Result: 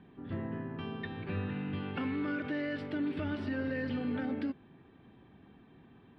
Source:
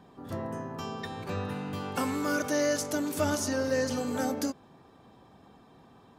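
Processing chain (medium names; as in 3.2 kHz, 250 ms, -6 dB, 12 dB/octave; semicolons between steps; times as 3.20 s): inverse Chebyshev low-pass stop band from 6 kHz, stop band 40 dB; high-order bell 790 Hz -9 dB; peak limiter -26.5 dBFS, peak gain reduction 6 dB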